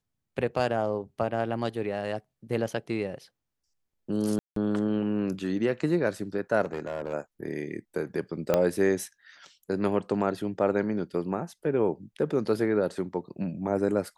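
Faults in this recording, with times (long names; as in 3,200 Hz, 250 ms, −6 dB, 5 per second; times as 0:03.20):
0:04.39–0:04.56: drop-out 173 ms
0:06.65–0:07.14: clipping −26.5 dBFS
0:08.54: click −10 dBFS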